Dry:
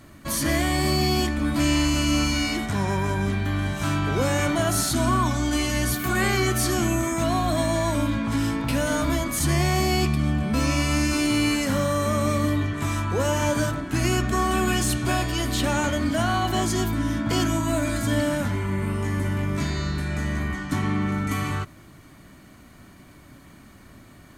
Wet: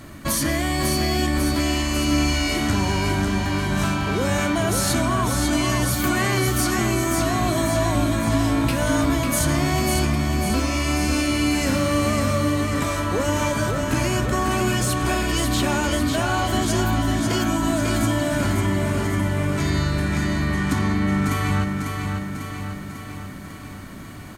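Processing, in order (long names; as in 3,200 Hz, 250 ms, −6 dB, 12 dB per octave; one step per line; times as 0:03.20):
downward compressor, threshold −27 dBFS, peak gain reduction 9.5 dB
repeating echo 547 ms, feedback 59%, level −5 dB
level +7.5 dB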